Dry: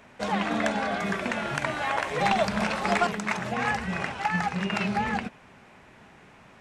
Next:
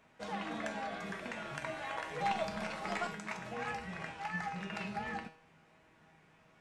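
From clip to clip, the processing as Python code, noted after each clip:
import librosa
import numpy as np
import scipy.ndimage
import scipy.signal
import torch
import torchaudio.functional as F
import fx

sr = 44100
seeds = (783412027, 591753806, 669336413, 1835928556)

y = fx.comb_fb(x, sr, f0_hz=160.0, decay_s=0.48, harmonics='all', damping=0.0, mix_pct=80)
y = y * 10.0 ** (-2.0 / 20.0)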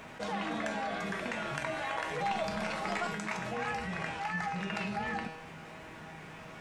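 y = fx.env_flatten(x, sr, amount_pct=50)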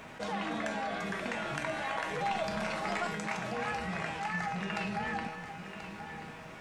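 y = x + 10.0 ** (-10.5 / 20.0) * np.pad(x, (int(1033 * sr / 1000.0), 0))[:len(x)]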